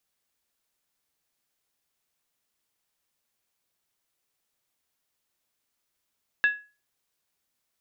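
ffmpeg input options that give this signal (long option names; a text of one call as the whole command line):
ffmpeg -f lavfi -i "aevalsrc='0.178*pow(10,-3*t/0.32)*sin(2*PI*1680*t)+0.0501*pow(10,-3*t/0.253)*sin(2*PI*2677.9*t)+0.0141*pow(10,-3*t/0.219)*sin(2*PI*3588.5*t)+0.00398*pow(10,-3*t/0.211)*sin(2*PI*3857.3*t)+0.00112*pow(10,-3*t/0.196)*sin(2*PI*4457*t)':duration=0.63:sample_rate=44100" out.wav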